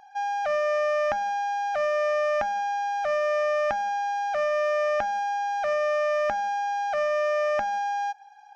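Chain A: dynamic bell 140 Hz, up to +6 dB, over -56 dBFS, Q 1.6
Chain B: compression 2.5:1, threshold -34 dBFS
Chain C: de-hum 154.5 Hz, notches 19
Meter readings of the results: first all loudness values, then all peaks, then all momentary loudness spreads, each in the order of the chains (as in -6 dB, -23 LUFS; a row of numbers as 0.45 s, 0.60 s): -26.0 LUFS, -33.5 LUFS, -26.0 LUFS; -9.5 dBFS, -19.0 dBFS, -10.5 dBFS; 3 LU, 1 LU, 3 LU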